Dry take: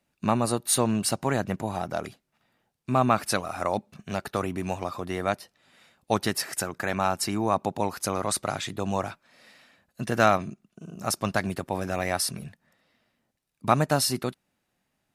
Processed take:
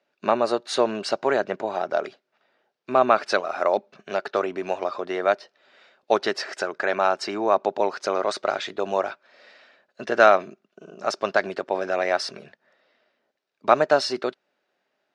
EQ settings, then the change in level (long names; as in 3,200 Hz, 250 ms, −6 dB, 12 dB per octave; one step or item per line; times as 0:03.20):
loudspeaker in its box 370–5,400 Hz, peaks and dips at 400 Hz +8 dB, 600 Hz +7 dB, 1,500 Hz +5 dB
+2.0 dB